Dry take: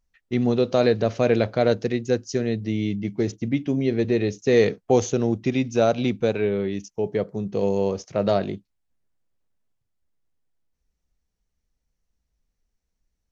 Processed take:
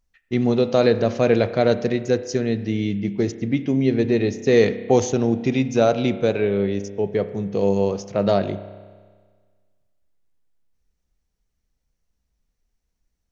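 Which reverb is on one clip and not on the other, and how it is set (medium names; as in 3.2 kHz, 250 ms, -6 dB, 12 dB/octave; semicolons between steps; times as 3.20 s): spring tank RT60 1.6 s, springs 30 ms, chirp 70 ms, DRR 12 dB; trim +2 dB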